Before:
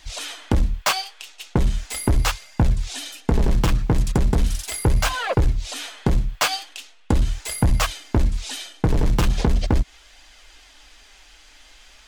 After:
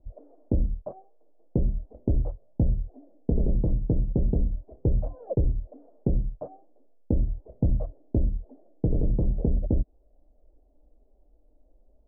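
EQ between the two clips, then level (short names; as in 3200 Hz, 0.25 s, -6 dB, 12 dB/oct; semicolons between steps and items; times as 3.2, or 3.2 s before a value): elliptic low-pass 600 Hz, stop band 80 dB; -4.5 dB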